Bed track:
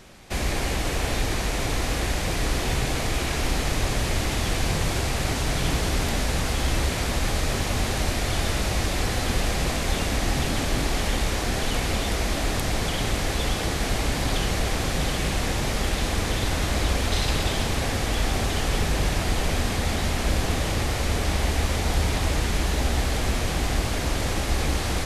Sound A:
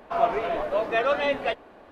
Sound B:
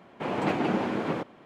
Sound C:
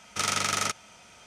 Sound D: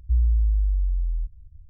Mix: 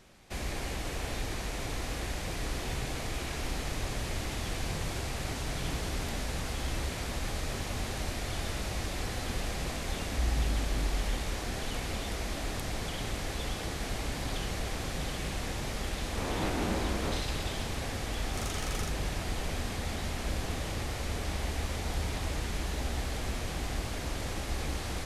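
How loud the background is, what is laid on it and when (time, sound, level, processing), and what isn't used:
bed track -10 dB
10.07 s: add D -3 dB + bass shelf 82 Hz -11 dB
15.97 s: add B -11 dB + every event in the spectrogram widened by 60 ms
18.18 s: add C -16.5 dB + peaking EQ 14 kHz +12.5 dB 0.84 oct
not used: A

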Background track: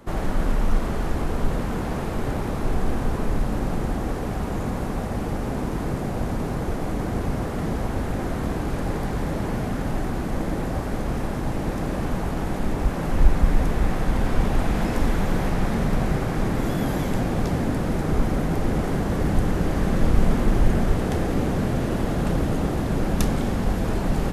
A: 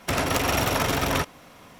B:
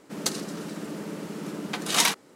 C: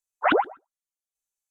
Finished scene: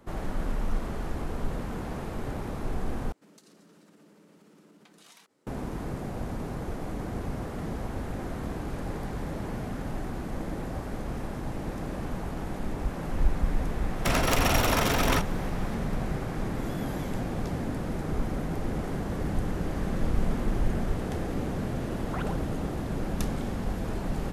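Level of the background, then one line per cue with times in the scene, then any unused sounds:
background track -8 dB
3.12 s: replace with B -15.5 dB + compression 5:1, threshold -38 dBFS
13.97 s: add A -1.5 dB
21.90 s: add C -8.5 dB + compression, threshold -25 dBFS

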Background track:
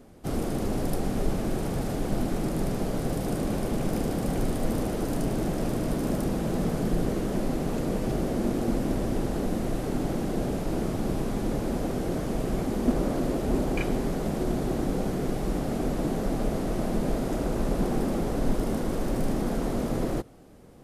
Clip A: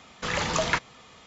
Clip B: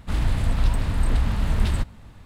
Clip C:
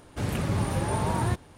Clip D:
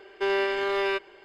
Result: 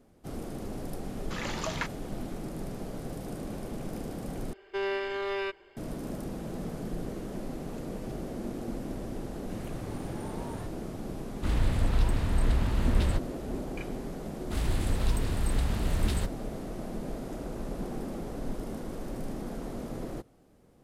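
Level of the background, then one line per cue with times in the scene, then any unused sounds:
background track -9.5 dB
1.08 s: add A -9 dB
4.53 s: replace with D -7 dB + bass shelf 140 Hz +12 dB
9.32 s: add C -15 dB
11.35 s: add B -4.5 dB
14.43 s: add B -7 dB + treble shelf 4.8 kHz +10.5 dB

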